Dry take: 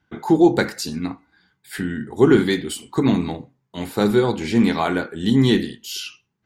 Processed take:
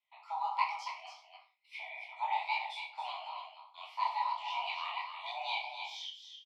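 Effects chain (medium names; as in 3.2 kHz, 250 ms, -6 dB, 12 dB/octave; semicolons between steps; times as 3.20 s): vowel filter e; frequency shift +480 Hz; high-order bell 3.8 kHz +8.5 dB; on a send: delay 281 ms -7.5 dB; on the sum: gated-style reverb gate 150 ms falling, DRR 3.5 dB; detune thickener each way 52 cents; trim -4 dB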